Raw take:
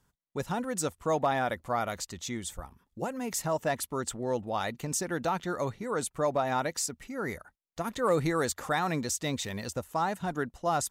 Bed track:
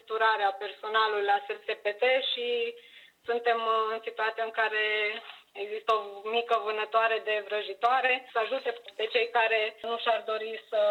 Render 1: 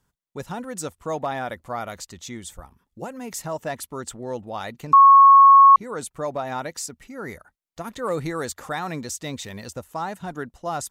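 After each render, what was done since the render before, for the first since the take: 4.93–5.76 s: bleep 1.1 kHz -7 dBFS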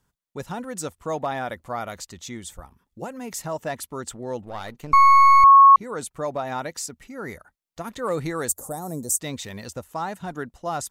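4.45–5.44 s: partial rectifier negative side -7 dB; 8.48–9.20 s: FFT filter 640 Hz 0 dB, 2.6 kHz -29 dB, 8.7 kHz +14 dB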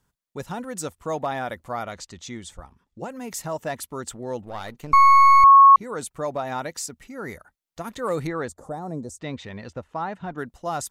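1.83–3.10 s: low-pass 7.2 kHz; 8.27–10.38 s: low-pass 2.9 kHz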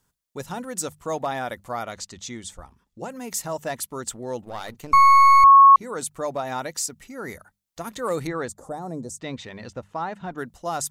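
tone controls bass -1 dB, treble +5 dB; hum notches 50/100/150/200 Hz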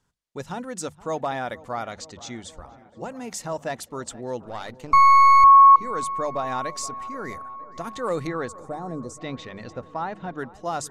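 distance through air 59 m; filtered feedback delay 471 ms, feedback 80%, low-pass 2 kHz, level -19.5 dB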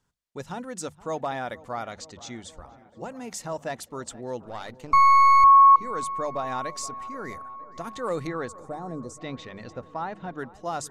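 trim -2.5 dB

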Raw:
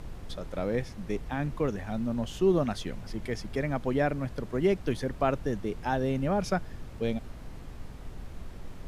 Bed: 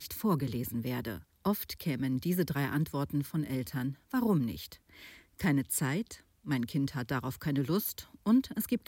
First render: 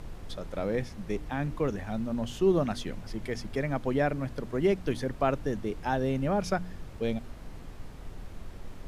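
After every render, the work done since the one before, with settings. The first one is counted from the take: de-hum 60 Hz, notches 5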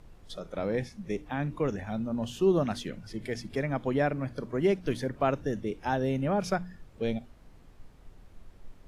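noise print and reduce 11 dB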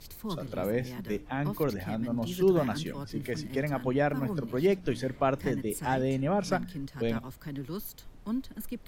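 add bed -7 dB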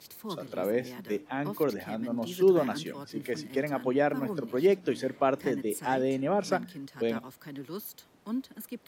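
Bessel high-pass 260 Hz, order 2; dynamic bell 350 Hz, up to +4 dB, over -38 dBFS, Q 0.83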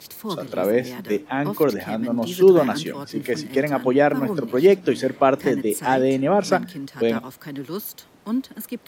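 trim +9 dB

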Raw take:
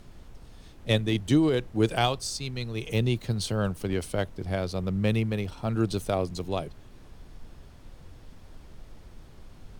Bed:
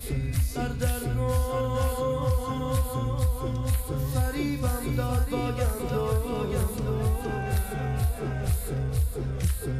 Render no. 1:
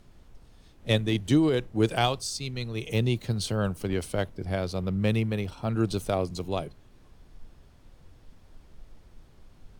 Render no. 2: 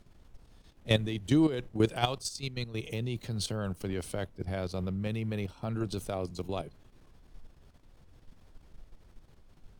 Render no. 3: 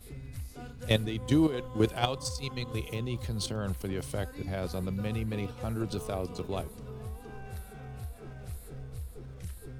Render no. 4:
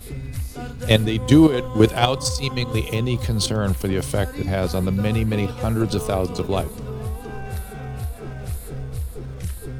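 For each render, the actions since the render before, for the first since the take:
noise print and reduce 6 dB
level held to a coarse grid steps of 11 dB
add bed -15 dB
trim +12 dB; peak limiter -2 dBFS, peak gain reduction 2.5 dB

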